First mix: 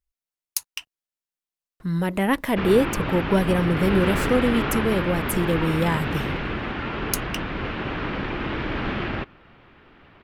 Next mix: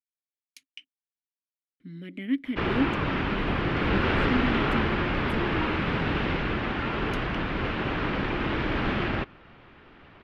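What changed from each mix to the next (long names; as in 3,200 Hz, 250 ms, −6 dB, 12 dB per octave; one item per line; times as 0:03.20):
speech: add formant filter i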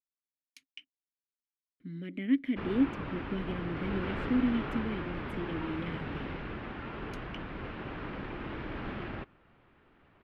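background −11.0 dB
master: add high-shelf EQ 3,200 Hz −8.5 dB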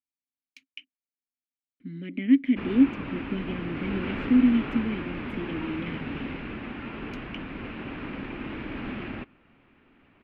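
master: add graphic EQ with 15 bands 250 Hz +9 dB, 2,500 Hz +8 dB, 10,000 Hz −9 dB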